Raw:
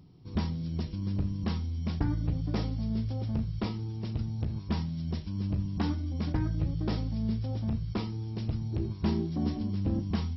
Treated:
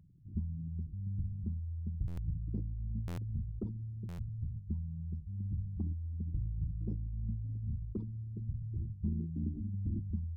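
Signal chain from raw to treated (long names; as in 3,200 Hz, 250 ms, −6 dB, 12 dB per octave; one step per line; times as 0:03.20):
spectral envelope exaggerated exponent 3
buffer that repeats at 0:02.07/0:03.07/0:04.08, samples 512, times 8
level −6 dB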